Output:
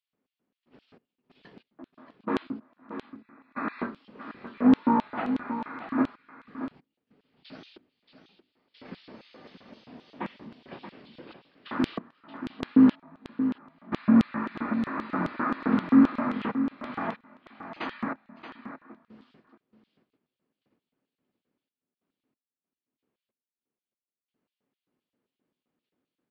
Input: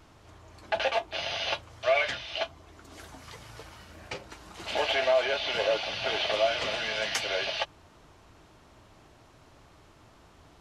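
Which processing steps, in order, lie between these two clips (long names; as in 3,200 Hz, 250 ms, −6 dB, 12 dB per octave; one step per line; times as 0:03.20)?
sub-octave generator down 1 octave, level +4 dB
mains-hum notches 60/120/180/240/300/360/420/480/540 Hz
noise gate −47 dBFS, range −26 dB
gate pattern "xxx.x..x...xxxxx" 115 BPM −24 dB
change of speed 0.403×
auto-filter high-pass square 3.8 Hz 220–3,400 Hz
on a send: single-tap delay 628 ms −10 dB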